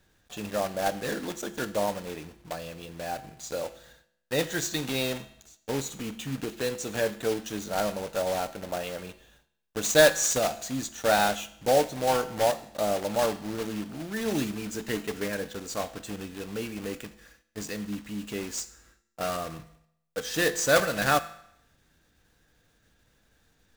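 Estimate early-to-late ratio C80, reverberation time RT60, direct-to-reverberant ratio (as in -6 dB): 18.0 dB, 0.75 s, 11.5 dB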